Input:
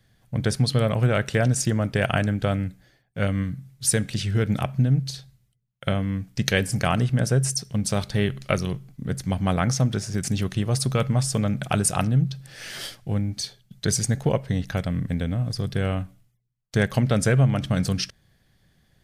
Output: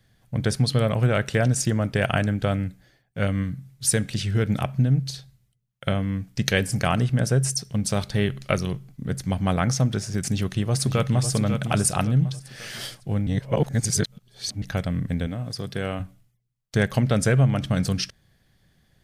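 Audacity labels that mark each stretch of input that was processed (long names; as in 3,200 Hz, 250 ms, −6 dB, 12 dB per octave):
10.190000	11.290000	delay throw 550 ms, feedback 40%, level −8 dB
13.270000	14.620000	reverse
15.270000	16.000000	high-pass filter 220 Hz 6 dB per octave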